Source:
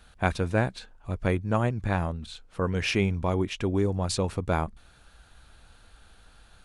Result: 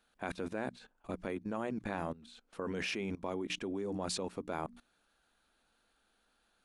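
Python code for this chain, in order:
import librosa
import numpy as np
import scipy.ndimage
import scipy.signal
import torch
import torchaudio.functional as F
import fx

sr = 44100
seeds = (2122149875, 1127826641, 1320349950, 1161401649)

y = fx.low_shelf_res(x, sr, hz=160.0, db=-13.0, q=1.5)
y = fx.hum_notches(y, sr, base_hz=60, count=5)
y = fx.level_steps(y, sr, step_db=19)
y = F.gain(torch.from_numpy(y), 1.0).numpy()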